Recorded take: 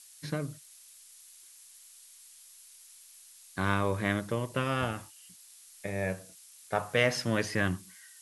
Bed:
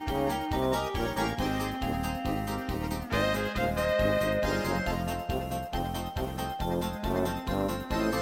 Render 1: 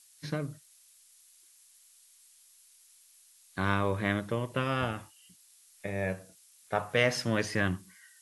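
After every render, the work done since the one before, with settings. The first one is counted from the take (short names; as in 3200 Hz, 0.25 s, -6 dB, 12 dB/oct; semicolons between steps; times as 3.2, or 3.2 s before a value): noise print and reduce 6 dB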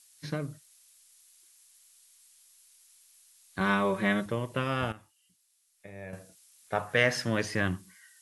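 3.6–4.26 comb 5.3 ms, depth 90%; 4.92–6.13 gain -11 dB; 6.87–7.29 bell 1700 Hz +8 dB 0.3 oct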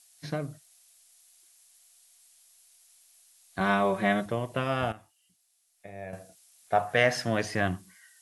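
bell 700 Hz +12.5 dB 0.25 oct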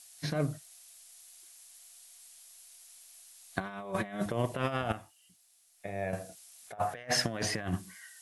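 negative-ratio compressor -32 dBFS, ratio -0.5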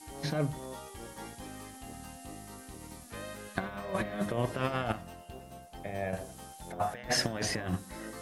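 add bed -15.5 dB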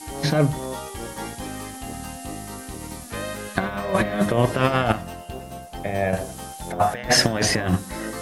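gain +12 dB; limiter -3 dBFS, peak gain reduction 2 dB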